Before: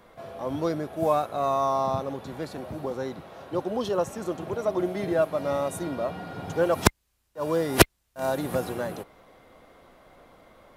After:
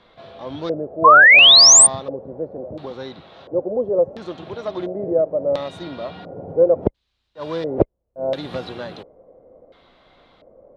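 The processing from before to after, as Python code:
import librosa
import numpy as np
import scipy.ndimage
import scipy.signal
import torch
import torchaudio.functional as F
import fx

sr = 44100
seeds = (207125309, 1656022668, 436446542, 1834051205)

y = fx.self_delay(x, sr, depth_ms=0.22)
y = fx.filter_lfo_lowpass(y, sr, shape='square', hz=0.72, low_hz=530.0, high_hz=3800.0, q=3.8)
y = fx.spec_paint(y, sr, seeds[0], shape='rise', start_s=1.04, length_s=0.83, low_hz=1000.0, high_hz=9300.0, level_db=-7.0)
y = F.gain(torch.from_numpy(y), -1.0).numpy()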